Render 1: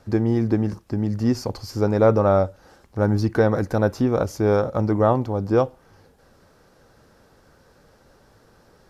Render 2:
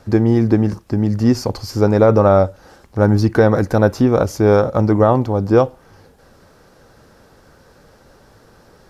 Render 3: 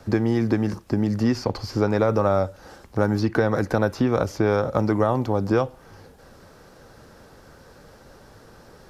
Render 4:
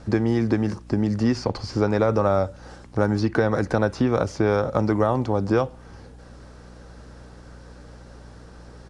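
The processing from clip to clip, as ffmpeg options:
-af "alimiter=level_in=7.5dB:limit=-1dB:release=50:level=0:latency=1,volume=-1dB"
-filter_complex "[0:a]acrossover=split=160|1100|4500[a][b][c][d];[a]acompressor=threshold=-30dB:ratio=4[e];[b]acompressor=threshold=-20dB:ratio=4[f];[c]acompressor=threshold=-28dB:ratio=4[g];[d]acompressor=threshold=-49dB:ratio=4[h];[e][f][g][h]amix=inputs=4:normalize=0"
-af "aeval=exprs='val(0)+0.00631*(sin(2*PI*60*n/s)+sin(2*PI*2*60*n/s)/2+sin(2*PI*3*60*n/s)/3+sin(2*PI*4*60*n/s)/4+sin(2*PI*5*60*n/s)/5)':c=same,aresample=22050,aresample=44100"

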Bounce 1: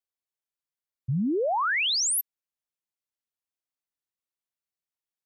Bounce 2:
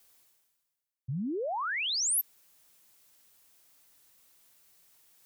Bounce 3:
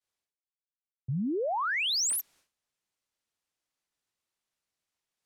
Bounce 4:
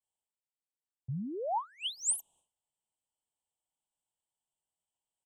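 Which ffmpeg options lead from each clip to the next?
-af "highshelf=f=6.7k:g=7.5,areverse,acompressor=mode=upward:threshold=-30dB:ratio=2.5,areverse,volume=-7.5dB"
-af "adynamicsmooth=sensitivity=5.5:basefreq=7.6k,agate=range=-33dB:threshold=-59dB:ratio=3:detection=peak,volume=3dB"
-af "firequalizer=gain_entry='entry(140,0);entry(290,-5);entry(560,-1);entry(900,6);entry(1400,-26);entry(2100,-28);entry(3000,3);entry(4700,-25);entry(8000,8);entry(12000,-12)':delay=0.05:min_phase=1,volume=-4.5dB"

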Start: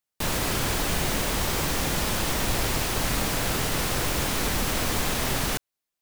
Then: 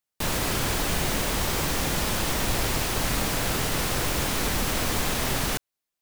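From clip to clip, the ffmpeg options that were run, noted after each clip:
-af anull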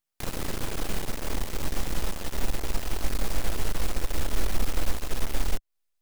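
-filter_complex "[0:a]acrossover=split=110|630[a][b][c];[a]acompressor=threshold=-34dB:ratio=4[d];[b]acompressor=threshold=-35dB:ratio=4[e];[c]acompressor=threshold=-38dB:ratio=4[f];[d][e][f]amix=inputs=3:normalize=0,aeval=exprs='max(val(0),0)':c=same,asubboost=boost=6.5:cutoff=52,volume=3.5dB"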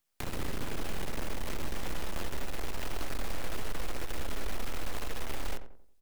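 -filter_complex "[0:a]acrossover=split=310|1400|3400[a][b][c][d];[a]acompressor=threshold=-28dB:ratio=4[e];[b]acompressor=threshold=-42dB:ratio=4[f];[c]acompressor=threshold=-45dB:ratio=4[g];[d]acompressor=threshold=-47dB:ratio=4[h];[e][f][g][h]amix=inputs=4:normalize=0,alimiter=level_in=5dB:limit=-24dB:level=0:latency=1:release=81,volume=-5dB,asplit=2[i][j];[j]adelay=90,lowpass=f=1.3k:p=1,volume=-9dB,asplit=2[k][l];[l]adelay=90,lowpass=f=1.3k:p=1,volume=0.41,asplit=2[m][n];[n]adelay=90,lowpass=f=1.3k:p=1,volume=0.41,asplit=2[o][p];[p]adelay=90,lowpass=f=1.3k:p=1,volume=0.41,asplit=2[q][r];[r]adelay=90,lowpass=f=1.3k:p=1,volume=0.41[s];[i][k][m][o][q][s]amix=inputs=6:normalize=0,volume=5dB"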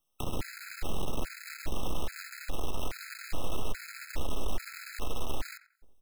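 -af "afftfilt=real='re*gt(sin(2*PI*1.2*pts/sr)*(1-2*mod(floor(b*sr/1024/1300),2)),0)':imag='im*gt(sin(2*PI*1.2*pts/sr)*(1-2*mod(floor(b*sr/1024/1300),2)),0)':win_size=1024:overlap=0.75,volume=3dB"

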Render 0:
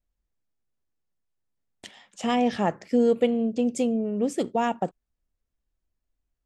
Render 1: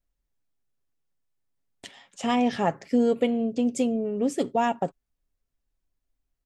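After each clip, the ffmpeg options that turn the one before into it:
-af "aecho=1:1:7.3:0.34"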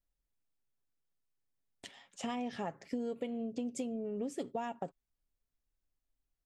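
-af "acompressor=threshold=-28dB:ratio=6,volume=-6.5dB"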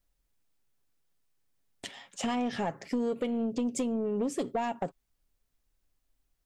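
-af "asoftclip=type=tanh:threshold=-31.5dB,volume=9dB"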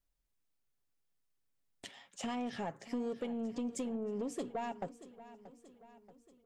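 -af "aecho=1:1:631|1262|1893|2524|3155:0.158|0.0856|0.0462|0.025|0.0135,volume=-7.5dB"

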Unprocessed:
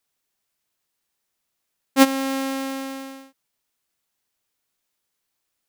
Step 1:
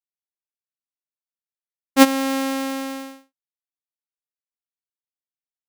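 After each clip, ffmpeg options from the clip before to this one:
-af "agate=range=-33dB:threshold=-33dB:ratio=3:detection=peak,volume=2.5dB"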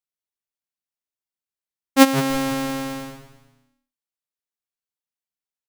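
-filter_complex "[0:a]asplit=5[a][b][c][d][e];[b]adelay=164,afreqshift=-130,volume=-13dB[f];[c]adelay=328,afreqshift=-260,volume=-20.3dB[g];[d]adelay=492,afreqshift=-390,volume=-27.7dB[h];[e]adelay=656,afreqshift=-520,volume=-35dB[i];[a][f][g][h][i]amix=inputs=5:normalize=0"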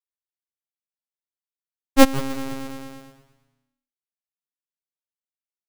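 -af "aeval=exprs='0.891*(cos(1*acos(clip(val(0)/0.891,-1,1)))-cos(1*PI/2))+0.282*(cos(6*acos(clip(val(0)/0.891,-1,1)))-cos(6*PI/2))+0.0891*(cos(7*acos(clip(val(0)/0.891,-1,1)))-cos(7*PI/2))':c=same,volume=-2dB"

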